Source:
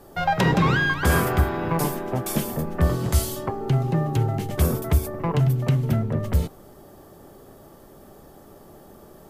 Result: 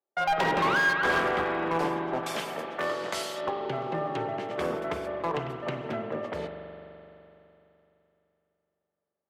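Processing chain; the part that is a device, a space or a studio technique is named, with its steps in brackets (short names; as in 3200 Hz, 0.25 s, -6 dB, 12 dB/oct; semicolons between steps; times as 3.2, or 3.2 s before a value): walkie-talkie (BPF 420–3000 Hz; hard clip -22 dBFS, distortion -13 dB; gate -38 dBFS, range -41 dB); 2.23–3.41 tilt +3 dB/oct; spring tank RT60 3.1 s, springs 42 ms, chirp 55 ms, DRR 5 dB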